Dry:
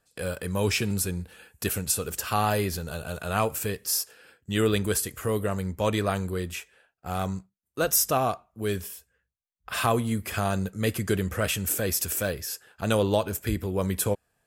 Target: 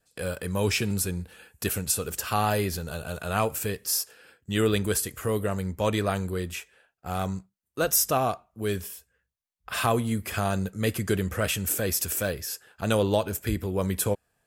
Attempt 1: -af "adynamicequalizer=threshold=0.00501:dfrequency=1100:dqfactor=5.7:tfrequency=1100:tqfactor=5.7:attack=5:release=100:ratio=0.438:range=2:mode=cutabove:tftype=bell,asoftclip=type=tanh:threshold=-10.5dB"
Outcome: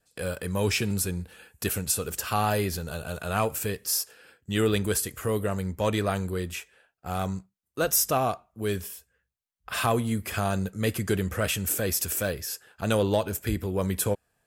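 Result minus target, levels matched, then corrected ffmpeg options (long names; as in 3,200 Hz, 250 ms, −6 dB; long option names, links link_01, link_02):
soft clipping: distortion +20 dB
-af "adynamicequalizer=threshold=0.00501:dfrequency=1100:dqfactor=5.7:tfrequency=1100:tqfactor=5.7:attack=5:release=100:ratio=0.438:range=2:mode=cutabove:tftype=bell,asoftclip=type=tanh:threshold=0dB"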